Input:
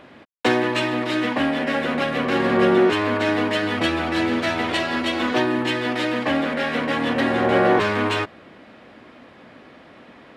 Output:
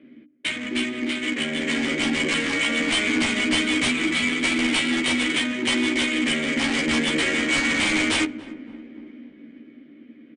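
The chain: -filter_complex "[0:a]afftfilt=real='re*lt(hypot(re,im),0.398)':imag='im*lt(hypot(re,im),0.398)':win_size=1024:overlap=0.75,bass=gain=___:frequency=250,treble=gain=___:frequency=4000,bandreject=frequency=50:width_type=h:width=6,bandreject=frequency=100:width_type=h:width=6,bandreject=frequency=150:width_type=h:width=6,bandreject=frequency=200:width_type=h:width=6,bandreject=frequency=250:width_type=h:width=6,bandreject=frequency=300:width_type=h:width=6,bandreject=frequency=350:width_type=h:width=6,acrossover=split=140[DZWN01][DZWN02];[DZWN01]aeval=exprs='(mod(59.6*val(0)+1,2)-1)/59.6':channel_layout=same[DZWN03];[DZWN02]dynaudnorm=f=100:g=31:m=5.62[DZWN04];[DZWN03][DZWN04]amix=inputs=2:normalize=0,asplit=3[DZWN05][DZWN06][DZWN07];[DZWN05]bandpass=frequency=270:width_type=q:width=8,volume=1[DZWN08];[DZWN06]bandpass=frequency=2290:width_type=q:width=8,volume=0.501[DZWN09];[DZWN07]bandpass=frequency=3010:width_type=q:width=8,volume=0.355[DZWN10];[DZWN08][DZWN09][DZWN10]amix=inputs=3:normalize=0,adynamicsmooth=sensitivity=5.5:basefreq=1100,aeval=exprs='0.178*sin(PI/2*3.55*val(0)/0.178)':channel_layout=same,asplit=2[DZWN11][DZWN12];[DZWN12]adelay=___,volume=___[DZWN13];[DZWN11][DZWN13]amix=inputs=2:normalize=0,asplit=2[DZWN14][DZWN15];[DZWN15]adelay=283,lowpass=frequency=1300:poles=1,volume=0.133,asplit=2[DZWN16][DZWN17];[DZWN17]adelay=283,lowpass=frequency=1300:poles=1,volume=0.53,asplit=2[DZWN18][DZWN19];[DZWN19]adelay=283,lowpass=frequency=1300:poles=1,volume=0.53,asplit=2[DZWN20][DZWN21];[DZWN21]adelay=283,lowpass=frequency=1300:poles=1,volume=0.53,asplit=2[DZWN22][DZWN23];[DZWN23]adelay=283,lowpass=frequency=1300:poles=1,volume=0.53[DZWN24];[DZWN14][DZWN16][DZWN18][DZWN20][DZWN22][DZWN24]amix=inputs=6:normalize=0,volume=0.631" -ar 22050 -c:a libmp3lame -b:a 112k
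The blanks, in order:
-1, 14, 13, 0.708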